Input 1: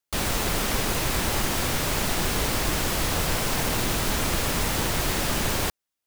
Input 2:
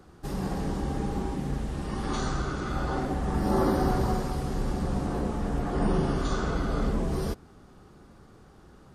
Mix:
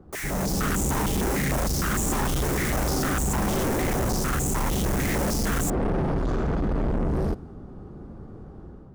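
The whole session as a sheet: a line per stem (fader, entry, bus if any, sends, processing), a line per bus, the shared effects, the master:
−5.0 dB, 0.00 s, no send, flat-topped bell 3,400 Hz −10.5 dB 1.2 octaves; high-pass on a step sequencer 6.6 Hz 380–7,300 Hz
−3.0 dB, 0.00 s, no send, wavefolder on the positive side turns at −25 dBFS; tilt shelving filter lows +8.5 dB, about 1,100 Hz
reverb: not used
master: automatic gain control gain up to 7.5 dB; soft clipping −22 dBFS, distortion −7 dB; one half of a high-frequency compander decoder only

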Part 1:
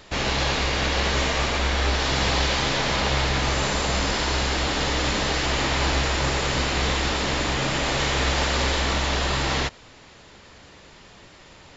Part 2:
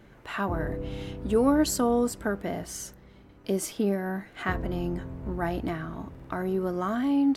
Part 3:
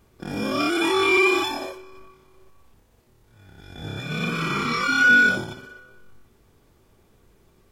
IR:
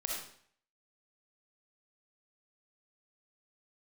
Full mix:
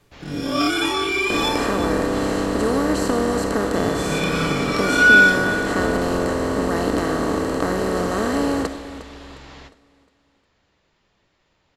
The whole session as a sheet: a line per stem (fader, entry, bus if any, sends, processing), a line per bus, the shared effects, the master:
−19.5 dB, 0.00 s, send −14 dB, echo send −22 dB, no processing
−5.0 dB, 1.30 s, send −9 dB, echo send −12.5 dB, compressor on every frequency bin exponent 0.2
0.0 dB, 0.00 s, no send, echo send −14 dB, high-shelf EQ 5,100 Hz +11.5 dB; comb filter 6.9 ms, depth 90%; rotating-speaker cabinet horn 1.1 Hz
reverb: on, RT60 0.60 s, pre-delay 20 ms
echo: repeating echo 357 ms, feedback 39%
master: high-shelf EQ 8,800 Hz −11.5 dB

